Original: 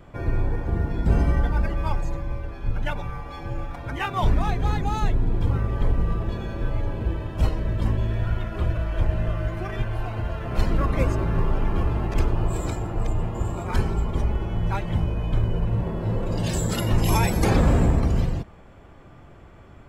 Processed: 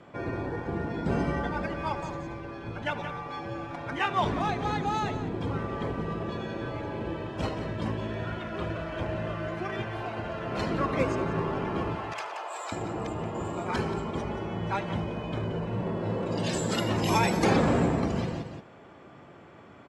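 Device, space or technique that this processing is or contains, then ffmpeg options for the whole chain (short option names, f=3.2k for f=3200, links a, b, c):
ducked delay: -filter_complex "[0:a]highpass=180,asettb=1/sr,asplit=3[a][b][c];[a]atrim=end=11.954[d];[b]atrim=start=11.95:end=12.72,asetpts=PTS-STARTPTS,afade=t=in:d=0.004:c=qsin,afade=t=out:st=0.766:d=0.004:c=qsin,highpass=f=670:w=0.5412,highpass=f=670:w=1.3066[e];[c]atrim=start=12.716[f];[d][e]acrossfade=d=0.004:c1=hsin:c2=qsin[g];[g][f]acrossfade=d=0.004:c1=qsin:c2=hsin,asplit=3[h][i][j];[i]adelay=177,volume=-7dB[k];[j]apad=whole_len=884661[l];[k][l]sidechaincompress=threshold=-35dB:ratio=8:attack=16:release=105[m];[h][m]amix=inputs=2:normalize=0,lowpass=6.7k,aecho=1:1:75|150|225:0.133|0.0507|0.0193"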